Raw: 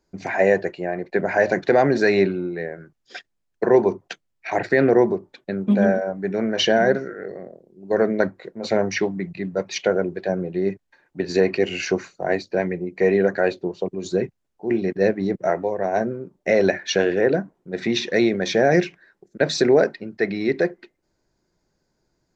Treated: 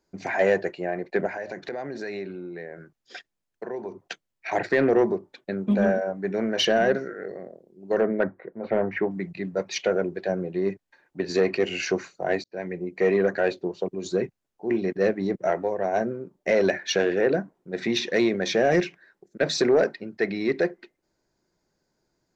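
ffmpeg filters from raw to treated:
-filter_complex "[0:a]asettb=1/sr,asplit=3[s0][s1][s2];[s0]atrim=end=1.274[s3];[s1]atrim=start=1.27:end=3.97,asetpts=PTS-STARTPTS,afade=t=in:d=0.004:c=qsin,afade=t=out:st=2.696:d=0.004:c=qsin,acompressor=threshold=0.0251:ratio=3:attack=3.2:release=140:knee=1:detection=peak[s4];[s2]atrim=start=3.966[s5];[s3][s4]acrossfade=d=0.004:c1=hsin:c2=qsin[s6];[s6][s5]acrossfade=d=0.004:c1=qsin:c2=hsin,asettb=1/sr,asplit=3[s7][s8][s9];[s7]atrim=end=8.014[s10];[s8]atrim=start=8.01:end=9.11,asetpts=PTS-STARTPTS,afade=t=in:d=0.004:c=qsin,afade=t=out:st=1.096:d=0.004:c=qsin,lowpass=f=2000:w=0.5412,lowpass=f=2000:w=1.3066[s11];[s9]atrim=start=9.106[s12];[s10][s11]acrossfade=d=0.004:c1=hsin:c2=qsin[s13];[s13][s12]acrossfade=d=0.004:c1=qsin:c2=hsin,asplit=2[s14][s15];[s14]atrim=end=12.44,asetpts=PTS-STARTPTS,afade=t=out:st=12.436:d=0.004:c=hsin[s16];[s15]atrim=start=12.44,asetpts=PTS-STARTPTS,afade=t=in:d=0.42[s17];[s16][s17]concat=n=2:v=0:a=1,lowshelf=f=120:g=-7,acontrast=73,volume=0.376"

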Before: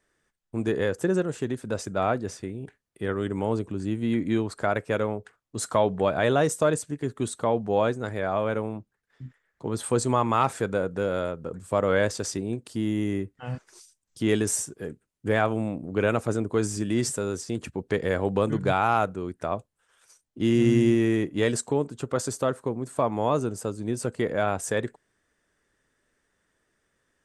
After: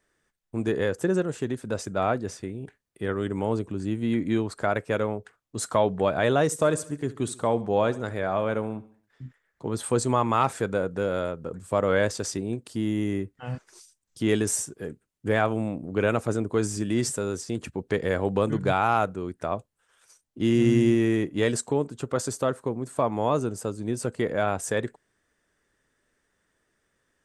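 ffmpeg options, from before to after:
-filter_complex "[0:a]asettb=1/sr,asplit=3[s0][s1][s2];[s0]atrim=end=6.454[s3];[s1]atrim=start=6.45:end=9.24,asetpts=PTS-STARTPTS,afade=t=in:d=0.004:c=qsin,afade=t=out:st=2.786:d=0.004:c=qsin,aecho=1:1:69|138|207|276:0.126|0.0592|0.0278|0.0131,atrim=end_sample=123039[s4];[s2]atrim=start=9.236[s5];[s3][s4]acrossfade=d=0.004:c1=hsin:c2=qsin[s6];[s6][s5]acrossfade=d=0.004:c1=qsin:c2=hsin"

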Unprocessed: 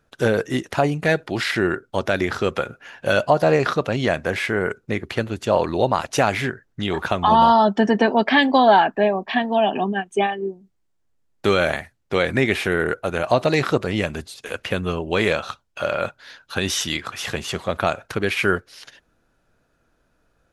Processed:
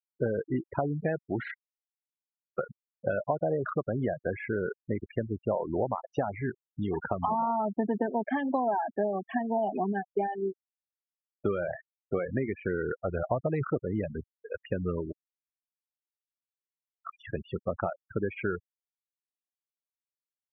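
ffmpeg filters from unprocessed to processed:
-filter_complex "[0:a]asettb=1/sr,asplit=3[s0][s1][s2];[s0]atrim=end=12.714[s3];[s1]atrim=start=12.71:end=13.65,asetpts=PTS-STARTPTS,afade=t=in:d=0.004:c=qsin,afade=t=out:st=0.936:d=0.004:c=qsin,asubboost=boost=8.5:cutoff=140[s4];[s2]atrim=start=13.646[s5];[s3][s4]acrossfade=d=0.004:c1=hsin:c2=qsin[s6];[s6][s5]acrossfade=d=0.004:c1=qsin:c2=hsin,asplit=5[s7][s8][s9][s10][s11];[s7]atrim=end=1.54,asetpts=PTS-STARTPTS,afade=t=out:st=1.536:d=0.004:c=hsin[s12];[s8]atrim=start=1.54:end=2.58,asetpts=PTS-STARTPTS,volume=0[s13];[s9]atrim=start=2.58:end=15.12,asetpts=PTS-STARTPTS,afade=t=in:d=0.004:c=hsin,afade=t=out:st=12.536:d=0.004:c=hsin[s14];[s10]atrim=start=15.12:end=17.02,asetpts=PTS-STARTPTS,volume=0[s15];[s11]atrim=start=17.02,asetpts=PTS-STARTPTS,afade=t=in:d=0.004:c=hsin[s16];[s12][s13][s14][s15][s16]concat=n=5:v=0:a=1,acompressor=threshold=0.112:ratio=12,afftfilt=real='re*gte(hypot(re,im),0.112)':imag='im*gte(hypot(re,im),0.112)':win_size=1024:overlap=0.75,lowpass=1300,volume=0.596"

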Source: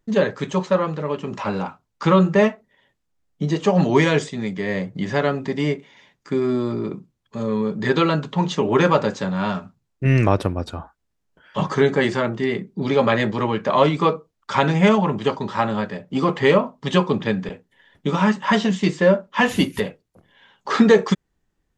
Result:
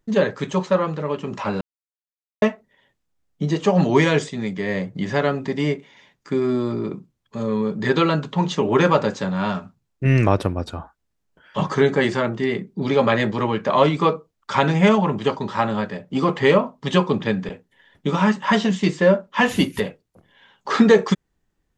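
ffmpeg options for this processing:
-filter_complex "[0:a]asplit=3[s0][s1][s2];[s0]atrim=end=1.61,asetpts=PTS-STARTPTS,afade=t=out:st=1.606:d=0.004:c=hsin[s3];[s1]atrim=start=1.61:end=2.42,asetpts=PTS-STARTPTS,volume=0[s4];[s2]atrim=start=2.42,asetpts=PTS-STARTPTS,afade=t=in:d=0.004:c=hsin[s5];[s3][s4][s5]concat=n=3:v=0:a=1"

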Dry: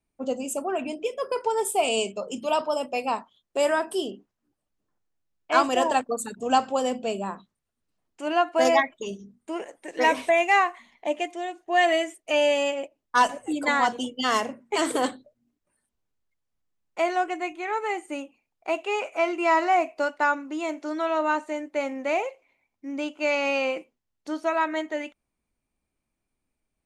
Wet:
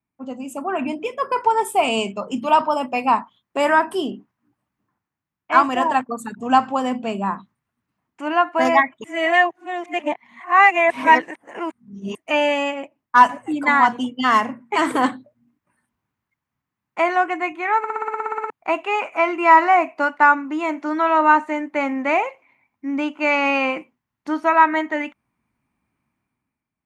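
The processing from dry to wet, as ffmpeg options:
-filter_complex "[0:a]asplit=15[s0][s1][s2][s3][s4][s5][s6][s7][s8][s9][s10][s11][s12][s13][s14];[s0]atrim=end=9.042[s15];[s1]atrim=start=9.038:end=12.152,asetpts=PTS-STARTPTS,areverse[s16];[s2]atrim=start=12.148:end=17.842[s17];[s3]atrim=start=17.778:end=17.842[s18];[s4]atrim=start=17.778:end=17.842[s19];[s5]atrim=start=17.778:end=17.842[s20];[s6]atrim=start=17.778:end=17.842[s21];[s7]atrim=start=17.778:end=17.842[s22];[s8]atrim=start=17.778:end=17.842[s23];[s9]atrim=start=17.778:end=17.842[s24];[s10]atrim=start=17.778:end=17.842[s25];[s11]atrim=start=17.778:end=17.842[s26];[s12]atrim=start=17.778:end=17.842[s27];[s13]atrim=start=17.778:end=17.842[s28];[s14]atrim=start=18.498[s29];[s15][s16]acrossfade=d=0.004:c1=hsin:c2=hsin[s30];[s30][s17]acrossfade=d=0.004:c1=hsin:c2=hsin[s31];[s31][s18]acrossfade=d=0.004:c1=hsin:c2=hsin[s32];[s32][s19]acrossfade=d=0.004:c1=hsin:c2=hsin[s33];[s33][s20]acrossfade=d=0.004:c1=hsin:c2=hsin[s34];[s34][s21]acrossfade=d=0.004:c1=hsin:c2=hsin[s35];[s35][s22]acrossfade=d=0.004:c1=hsin:c2=hsin[s36];[s36][s23]acrossfade=d=0.004:c1=hsin:c2=hsin[s37];[s37][s24]acrossfade=d=0.004:c1=hsin:c2=hsin[s38];[s38][s25]acrossfade=d=0.004:c1=hsin:c2=hsin[s39];[s39][s26]acrossfade=d=0.004:c1=hsin:c2=hsin[s40];[s40][s27]acrossfade=d=0.004:c1=hsin:c2=hsin[s41];[s41][s28]acrossfade=d=0.004:c1=hsin:c2=hsin[s42];[s42][s29]acrossfade=d=0.004:c1=hsin:c2=hsin,highpass=57,dynaudnorm=f=120:g=11:m=3.76,equalizer=f=125:t=o:w=1:g=9,equalizer=f=250:t=o:w=1:g=7,equalizer=f=500:t=o:w=1:g=-5,equalizer=f=1000:t=o:w=1:g=10,equalizer=f=2000:t=o:w=1:g=7,equalizer=f=4000:t=o:w=1:g=-3,equalizer=f=8000:t=o:w=1:g=-5,volume=0.398"

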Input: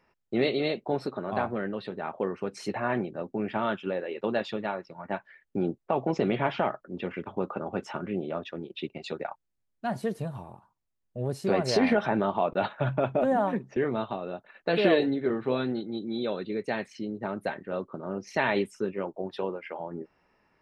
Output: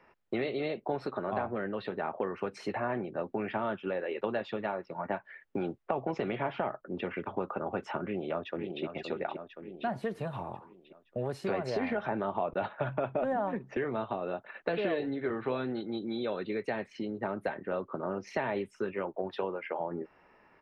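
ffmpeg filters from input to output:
-filter_complex "[0:a]asplit=2[s0][s1];[s1]afade=t=in:st=8.04:d=0.01,afade=t=out:st=8.84:d=0.01,aecho=0:1:520|1040|1560|2080|2600|3120:0.334965|0.167483|0.0837414|0.0418707|0.0209353|0.0104677[s2];[s0][s2]amix=inputs=2:normalize=0,acrossover=split=110|850[s3][s4][s5];[s3]acompressor=threshold=0.00316:ratio=4[s6];[s4]acompressor=threshold=0.01:ratio=4[s7];[s5]acompressor=threshold=0.00447:ratio=4[s8];[s6][s7][s8]amix=inputs=3:normalize=0,bass=f=250:g=-6,treble=f=4000:g=-14,volume=2.37"

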